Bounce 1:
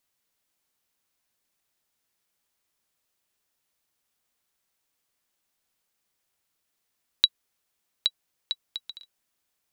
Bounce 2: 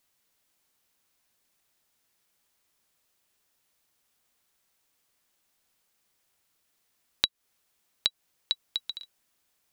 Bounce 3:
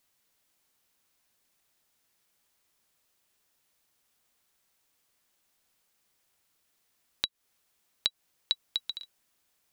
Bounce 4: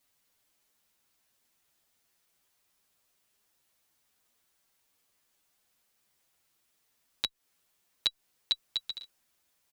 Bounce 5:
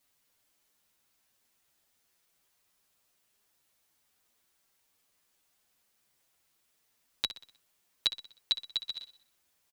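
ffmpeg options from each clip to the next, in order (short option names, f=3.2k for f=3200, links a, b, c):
-af "acompressor=threshold=-27dB:ratio=6,volume=4.5dB"
-af "alimiter=limit=-7.5dB:level=0:latency=1:release=114"
-filter_complex "[0:a]asplit=2[a][b];[b]adelay=8.2,afreqshift=0.4[c];[a][c]amix=inputs=2:normalize=1,volume=2.5dB"
-af "aecho=1:1:62|124|186|248|310:0.211|0.101|0.0487|0.0234|0.0112"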